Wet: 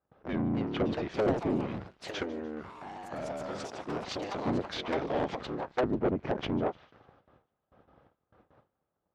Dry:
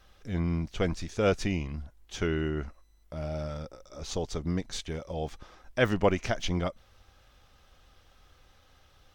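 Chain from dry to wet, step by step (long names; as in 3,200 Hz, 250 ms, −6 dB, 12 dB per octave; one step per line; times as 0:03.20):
sub-harmonics by changed cycles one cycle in 3, inverted
treble cut that deepens with the level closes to 400 Hz, closed at −23 dBFS
noise gate with hold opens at −48 dBFS
high-pass filter 88 Hz 12 dB per octave
low-shelf EQ 180 Hz −11.5 dB
low-pass that shuts in the quiet parts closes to 790 Hz, open at −31.5 dBFS
0:02.22–0:04.46: downward compressor 4 to 1, threshold −43 dBFS, peak gain reduction 12 dB
soft clipping −28.5 dBFS, distortion −12 dB
delay with pitch and tempo change per echo 336 ms, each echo +4 semitones, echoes 3, each echo −6 dB
delay with a high-pass on its return 149 ms, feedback 48%, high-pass 3,200 Hz, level −18 dB
level +7 dB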